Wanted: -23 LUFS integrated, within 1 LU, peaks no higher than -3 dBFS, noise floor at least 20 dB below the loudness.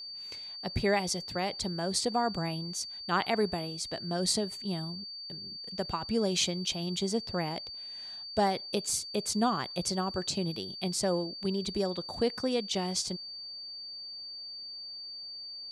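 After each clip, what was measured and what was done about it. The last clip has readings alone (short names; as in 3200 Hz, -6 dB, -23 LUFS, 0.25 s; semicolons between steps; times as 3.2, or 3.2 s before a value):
steady tone 4600 Hz; tone level -40 dBFS; loudness -32.5 LUFS; peak -15.0 dBFS; loudness target -23.0 LUFS
-> notch 4600 Hz, Q 30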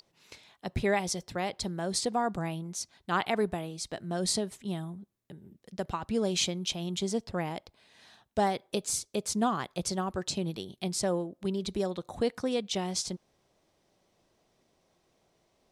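steady tone none; loudness -32.0 LUFS; peak -15.0 dBFS; loudness target -23.0 LUFS
-> gain +9 dB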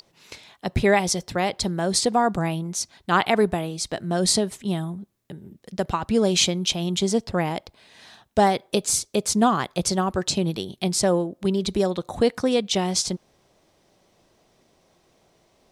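loudness -23.0 LUFS; peak -6.0 dBFS; noise floor -64 dBFS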